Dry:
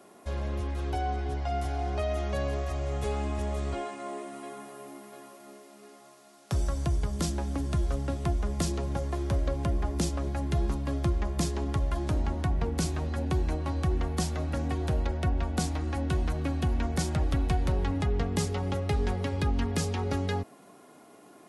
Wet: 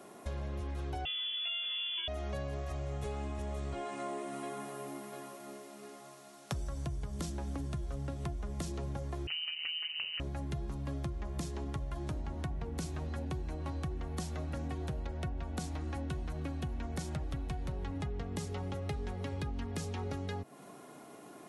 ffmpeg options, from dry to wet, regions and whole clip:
-filter_complex "[0:a]asettb=1/sr,asplit=3[s0][s1][s2];[s0]atrim=end=1.054[s3];[s1]atrim=start=1.05:end=2.08,asetpts=PTS-STARTPTS,afade=t=in:d=0.004:c=qsin,afade=t=out:st=1.026:d=0.004:c=qsin,asplit=2[s4][s5];[s5]adelay=17,volume=0.562[s6];[s4][s6]amix=inputs=2:normalize=0,atrim=end_sample=45423,lowpass=f=3000:t=q:w=0.5098,lowpass=f=3000:t=q:w=0.6013,lowpass=f=3000:t=q:w=0.9,lowpass=f=3000:t=q:w=2.563,afreqshift=-3500,lowshelf=f=140:t=q:w=1.5:g=-9[s7];[s2]atrim=start=2.076[s8];[s3][s7]acrossfade=d=0.004:c1=hsin:c2=qsin[s9];[s9][s8]acrossfade=d=0.004:c1=qsin:c2=hsin,asettb=1/sr,asplit=3[s10][s11][s12];[s10]atrim=end=9.274[s13];[s11]atrim=start=9.27:end=10.2,asetpts=PTS-STARTPTS,afade=t=in:d=0.004:c=qsin,afade=t=out:st=0.926:d=0.004:c=qsin,lowpass=f=2600:t=q:w=0.5098,lowpass=f=2600:t=q:w=0.6013,lowpass=f=2600:t=q:w=0.9,lowpass=f=2600:t=q:w=2.563,afreqshift=-3000,aeval=exprs='val(0)*sin(2*PI*80*n/s)':c=same[s14];[s12]atrim=start=10.196[s15];[s13][s14]acrossfade=d=0.004:c1=hsin:c2=qsin[s16];[s16][s15]acrossfade=d=0.004:c1=qsin:c2=hsin,equalizer=f=140:w=6.6:g=6.5,bandreject=f=4800:w=26,acompressor=threshold=0.0141:ratio=6,volume=1.19"

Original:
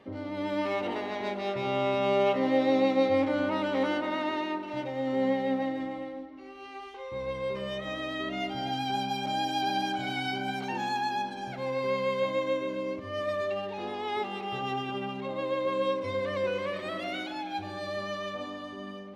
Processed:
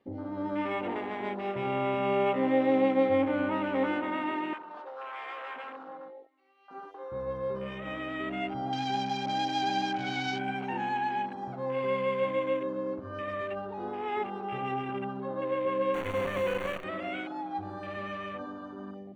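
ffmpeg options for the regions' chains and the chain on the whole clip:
-filter_complex "[0:a]asettb=1/sr,asplit=3[s0][s1][s2];[s0]atrim=end=4.534[s3];[s1]atrim=start=4.53:end=6.71,asetpts=PTS-STARTPTS,afade=t=in:d=0.004:c=qsin,afade=t=out:st=2.176:d=0.004:c=qsin,aeval=exprs='0.0266*(abs(mod(val(0)/0.0266+3,4)-2)-1)':c=same,highpass=610,lowpass=4000[s4];[s2]atrim=start=6.706[s5];[s3][s4]acrossfade=d=0.004:c1=hsin:c2=qsin[s6];[s6][s5]acrossfade=d=0.004:c1=qsin:c2=hsin,asettb=1/sr,asplit=3[s7][s8][s9];[s7]atrim=end=15.944[s10];[s8]atrim=start=15.94:end=16.84,asetpts=PTS-STARTPTS,afade=t=in:d=0.004:c=qsin,afade=t=out:st=0.896:d=0.004:c=qsin,acrusher=bits=6:dc=4:mix=0:aa=0.000001,asuperstop=centerf=5100:order=12:qfactor=5.8[s11];[s9]atrim=start=16.836[s12];[s10][s11]acrossfade=d=0.004:c1=hsin:c2=qsin[s13];[s13][s12]acrossfade=d=0.004:c1=qsin:c2=hsin,afwtdn=0.0112,bandreject=f=610:w=15"

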